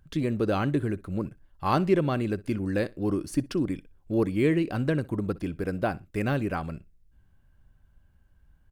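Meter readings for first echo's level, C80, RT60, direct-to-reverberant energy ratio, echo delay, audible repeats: −21.5 dB, no reverb audible, no reverb audible, no reverb audible, 61 ms, 1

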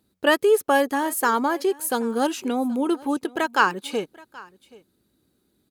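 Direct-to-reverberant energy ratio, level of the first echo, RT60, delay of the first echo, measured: no reverb audible, −22.5 dB, no reverb audible, 777 ms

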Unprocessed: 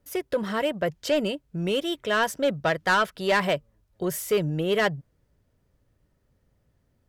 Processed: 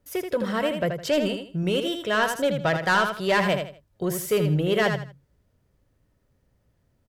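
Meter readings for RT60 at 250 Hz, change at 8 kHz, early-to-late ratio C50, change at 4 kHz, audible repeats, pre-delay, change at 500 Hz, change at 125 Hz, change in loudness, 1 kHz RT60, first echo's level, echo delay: no reverb audible, +1.0 dB, no reverb audible, +1.0 dB, 3, no reverb audible, +1.0 dB, +5.0 dB, +1.5 dB, no reverb audible, −6.5 dB, 80 ms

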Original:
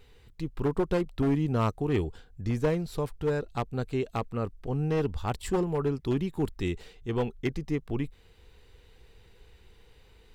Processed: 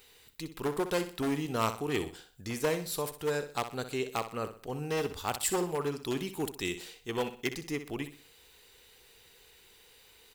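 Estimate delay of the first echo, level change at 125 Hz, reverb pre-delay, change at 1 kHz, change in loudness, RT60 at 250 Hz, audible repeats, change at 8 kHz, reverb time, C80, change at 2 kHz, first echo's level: 62 ms, −10.5 dB, no reverb audible, 0.0 dB, −3.5 dB, no reverb audible, 3, +12.0 dB, no reverb audible, no reverb audible, +3.0 dB, −11.0 dB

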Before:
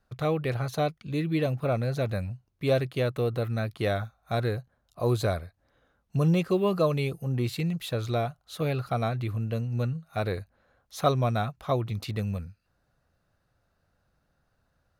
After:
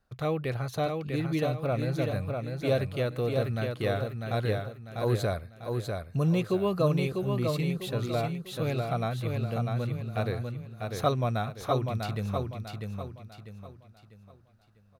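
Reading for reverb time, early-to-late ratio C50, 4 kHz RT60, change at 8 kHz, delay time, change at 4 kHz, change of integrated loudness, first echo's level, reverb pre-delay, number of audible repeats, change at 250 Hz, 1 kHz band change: no reverb audible, no reverb audible, no reverb audible, −1.0 dB, 647 ms, −1.0 dB, −1.5 dB, −4.5 dB, no reverb audible, 4, −1.0 dB, −1.0 dB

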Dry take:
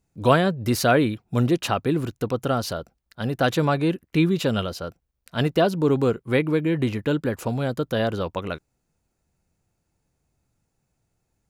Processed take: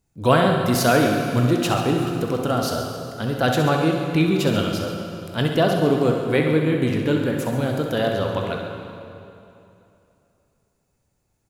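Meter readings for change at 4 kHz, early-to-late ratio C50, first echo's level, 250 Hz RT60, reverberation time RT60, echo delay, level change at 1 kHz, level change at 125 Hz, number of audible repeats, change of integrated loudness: +3.5 dB, 2.0 dB, −8.0 dB, 2.9 s, 2.9 s, 65 ms, +3.0 dB, +2.5 dB, 2, +2.5 dB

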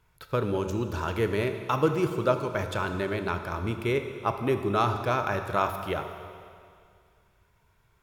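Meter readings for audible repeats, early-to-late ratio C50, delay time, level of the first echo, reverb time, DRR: no echo audible, 8.0 dB, no echo audible, no echo audible, 2.2 s, 7.0 dB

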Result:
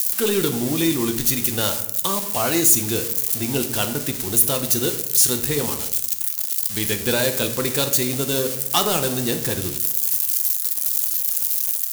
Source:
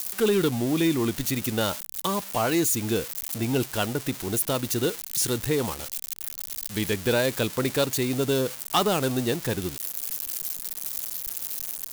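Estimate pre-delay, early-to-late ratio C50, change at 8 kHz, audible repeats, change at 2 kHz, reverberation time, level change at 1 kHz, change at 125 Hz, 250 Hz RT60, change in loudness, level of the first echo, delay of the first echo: 6 ms, 10.5 dB, +10.0 dB, no echo audible, +3.0 dB, 0.80 s, +1.5 dB, +1.5 dB, 1.1 s, +7.0 dB, no echo audible, no echo audible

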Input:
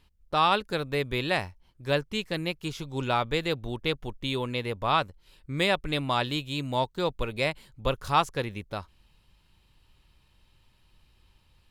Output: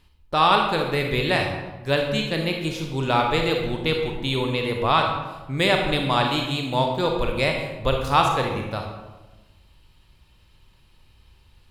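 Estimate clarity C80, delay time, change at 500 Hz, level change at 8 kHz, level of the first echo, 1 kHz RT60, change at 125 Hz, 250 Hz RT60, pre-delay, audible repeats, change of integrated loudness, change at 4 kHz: 6.0 dB, no echo audible, +6.5 dB, +5.5 dB, no echo audible, 1.1 s, +6.5 dB, 1.3 s, 32 ms, no echo audible, +6.0 dB, +6.0 dB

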